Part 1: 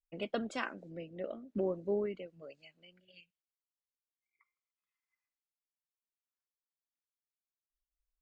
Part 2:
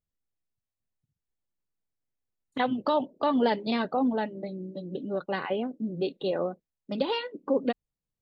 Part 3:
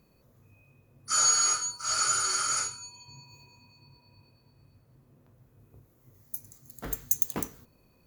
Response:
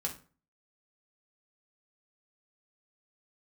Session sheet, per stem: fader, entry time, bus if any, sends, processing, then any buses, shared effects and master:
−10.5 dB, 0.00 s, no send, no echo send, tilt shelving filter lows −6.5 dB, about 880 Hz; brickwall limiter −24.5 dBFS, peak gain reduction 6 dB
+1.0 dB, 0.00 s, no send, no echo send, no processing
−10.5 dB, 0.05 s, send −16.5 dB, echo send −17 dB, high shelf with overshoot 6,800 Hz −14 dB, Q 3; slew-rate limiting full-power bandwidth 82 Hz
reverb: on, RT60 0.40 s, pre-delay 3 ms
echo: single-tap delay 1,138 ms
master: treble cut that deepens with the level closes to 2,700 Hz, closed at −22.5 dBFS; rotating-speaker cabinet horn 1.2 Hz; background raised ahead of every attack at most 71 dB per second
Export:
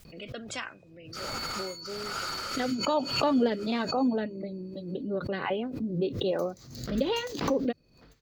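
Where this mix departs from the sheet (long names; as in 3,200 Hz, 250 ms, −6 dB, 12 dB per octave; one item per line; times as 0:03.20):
stem 1 −10.5 dB → +0.5 dB
stem 3 −10.5 dB → −2.0 dB
master: missing treble cut that deepens with the level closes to 2,700 Hz, closed at −22.5 dBFS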